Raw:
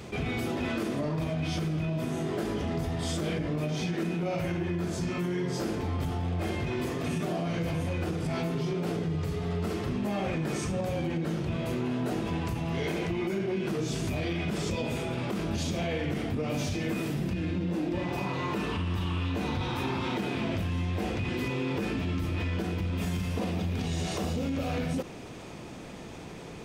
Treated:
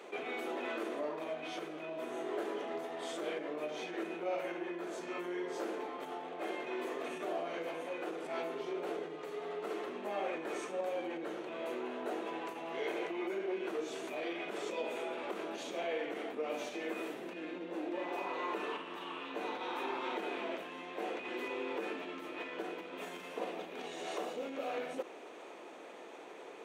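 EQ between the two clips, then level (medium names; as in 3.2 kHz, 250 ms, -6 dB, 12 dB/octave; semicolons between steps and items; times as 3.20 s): high-pass 370 Hz 24 dB/octave; treble shelf 3.7 kHz -10.5 dB; peaking EQ 5 kHz -8.5 dB 0.26 oct; -2.5 dB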